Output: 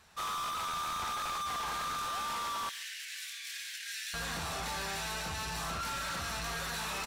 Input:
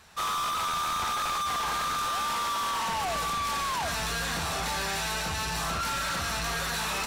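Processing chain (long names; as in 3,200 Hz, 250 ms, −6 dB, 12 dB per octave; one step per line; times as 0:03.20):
0:02.69–0:04.14: Butterworth high-pass 1,600 Hz 72 dB per octave
slap from a distant wall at 24 metres, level −26 dB
level −6.5 dB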